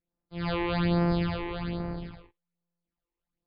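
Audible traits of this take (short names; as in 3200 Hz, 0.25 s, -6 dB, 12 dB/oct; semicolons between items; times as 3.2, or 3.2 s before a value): a buzz of ramps at a fixed pitch in blocks of 256 samples; phasing stages 8, 1.2 Hz, lowest notch 180–3600 Hz; MP3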